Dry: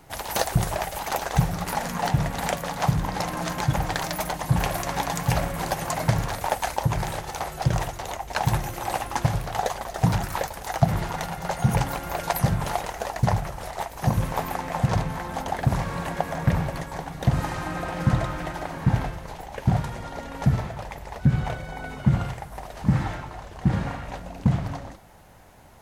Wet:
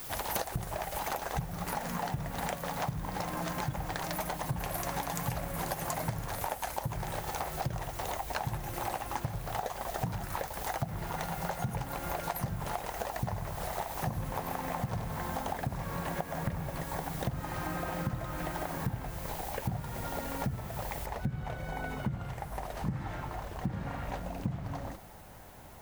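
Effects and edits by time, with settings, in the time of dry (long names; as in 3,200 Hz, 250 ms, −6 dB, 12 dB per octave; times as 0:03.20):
0:04.58–0:06.96: high-shelf EQ 8,600 Hz +7.5 dB
0:13.11–0:15.58: feedback echo at a low word length 96 ms, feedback 55%, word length 7 bits, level −8.5 dB
0:21.06: noise floor change −44 dB −60 dB
whole clip: high-shelf EQ 3,700 Hz −8 dB; downward compressor 6 to 1, threshold −32 dBFS; high-shelf EQ 10,000 Hz +11.5 dB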